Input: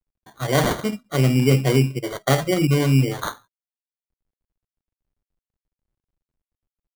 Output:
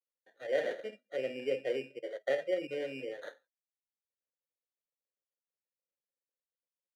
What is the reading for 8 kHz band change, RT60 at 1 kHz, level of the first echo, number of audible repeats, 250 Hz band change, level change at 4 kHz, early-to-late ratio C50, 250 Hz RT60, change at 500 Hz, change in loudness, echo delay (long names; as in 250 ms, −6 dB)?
below −30 dB, no reverb audible, no echo audible, no echo audible, −24.5 dB, −19.0 dB, no reverb audible, no reverb audible, −9.5 dB, −16.0 dB, no echo audible